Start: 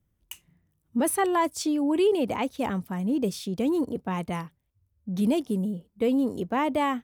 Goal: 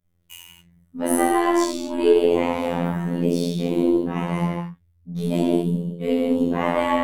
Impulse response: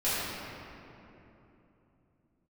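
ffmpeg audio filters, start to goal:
-filter_complex "[1:a]atrim=start_sample=2205,afade=type=out:start_time=0.28:duration=0.01,atrim=end_sample=12789,asetrate=36162,aresample=44100[link_01];[0:a][link_01]afir=irnorm=-1:irlink=0,aeval=exprs='1.19*(cos(1*acos(clip(val(0)/1.19,-1,1)))-cos(1*PI/2))+0.106*(cos(2*acos(clip(val(0)/1.19,-1,1)))-cos(2*PI/2))+0.0668*(cos(4*acos(clip(val(0)/1.19,-1,1)))-cos(4*PI/2))':channel_layout=same,afftfilt=real='hypot(re,im)*cos(PI*b)':imag='0':win_size=2048:overlap=0.75,volume=-3dB"

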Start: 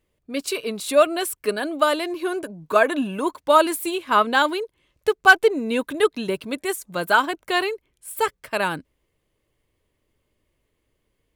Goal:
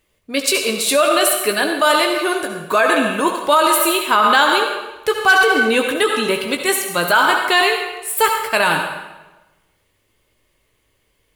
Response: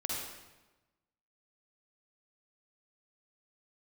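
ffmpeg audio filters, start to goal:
-filter_complex "[0:a]asplit=2[link_01][link_02];[link_02]equalizer=frequency=280:width_type=o:width=0.69:gain=-10[link_03];[1:a]atrim=start_sample=2205,adelay=18[link_04];[link_03][link_04]afir=irnorm=-1:irlink=0,volume=-6dB[link_05];[link_01][link_05]amix=inputs=2:normalize=0,alimiter=limit=-12.5dB:level=0:latency=1:release=33,tiltshelf=frequency=790:gain=-4,volume=7dB"

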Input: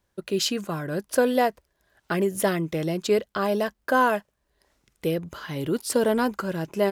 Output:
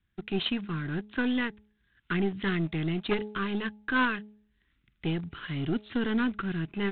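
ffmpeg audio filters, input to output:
ffmpeg -i in.wav -filter_complex "[0:a]asuperstop=centerf=660:order=4:qfactor=0.83,acrossover=split=330|1200[link_01][link_02][link_03];[link_02]acrusher=bits=5:dc=4:mix=0:aa=0.000001[link_04];[link_01][link_04][link_03]amix=inputs=3:normalize=0,bandreject=frequency=211:width_type=h:width=4,bandreject=frequency=422:width_type=h:width=4,bandreject=frequency=633:width_type=h:width=4,bandreject=frequency=844:width_type=h:width=4" -ar 8000 -c:a adpcm_ima_wav out.wav

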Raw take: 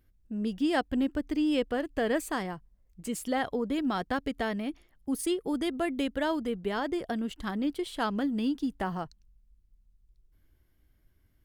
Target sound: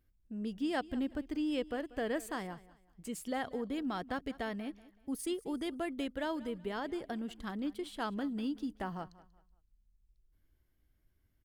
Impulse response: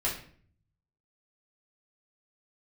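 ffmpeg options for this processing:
-af "aecho=1:1:188|376|564:0.112|0.0348|0.0108,volume=-7dB"

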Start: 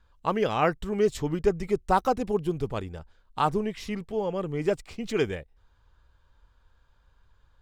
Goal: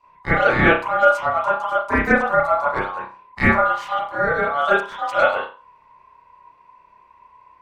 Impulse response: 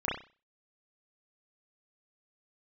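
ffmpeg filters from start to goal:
-filter_complex "[0:a]asettb=1/sr,asplit=3[link_01][link_02][link_03];[link_01]atrim=end=1.044[link_04];[link_02]atrim=start=1.04:end=2.06,asetpts=PTS-STARTPTS,afade=type=in:duration=0.004:curve=qsin,afade=type=out:start_time=1.016:duration=0.004:curve=qsin,acompressor=threshold=-24dB:ratio=4[link_05];[link_03]atrim=start=2.056[link_06];[link_04][link_05]acrossfade=duration=0.004:curve1=hsin:curve2=qsin[link_07];[link_07][link_06]acrossfade=duration=0.004:curve1=qsin:curve2=hsin,asettb=1/sr,asplit=3[link_08][link_09][link_10];[link_08]atrim=end=4.274[link_11];[link_09]atrim=start=4.27:end=4.94,asetpts=PTS-STARTPTS,afade=type=in:duration=0.004:curve=qsin,afade=type=out:start_time=0.666:duration=0.004:curve=qsin,equalizer=frequency=2500:width_type=o:width=0.31:gain=9.5[link_12];[link_10]atrim=start=4.936[link_13];[link_11][link_12]acrossfade=duration=0.004:curve1=hsin:curve2=qsin[link_14];[link_14][link_13]acrossfade=duration=0.004:curve1=qsin:curve2=hsin,aeval=exprs='val(0)*sin(2*PI*1000*n/s)':channel_layout=same[link_15];[1:a]atrim=start_sample=2205[link_16];[link_15][link_16]afir=irnorm=-1:irlink=0,volume=2.5dB"

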